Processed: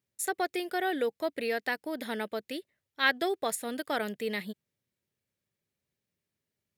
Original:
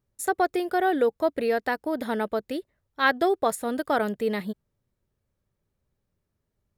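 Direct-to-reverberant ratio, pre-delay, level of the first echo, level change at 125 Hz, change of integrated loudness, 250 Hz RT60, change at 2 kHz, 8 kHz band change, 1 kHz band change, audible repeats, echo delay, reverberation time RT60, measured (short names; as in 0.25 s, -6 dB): none, none, none, n/a, -6.0 dB, none, -2.5 dB, 0.0 dB, -8.0 dB, none, none, none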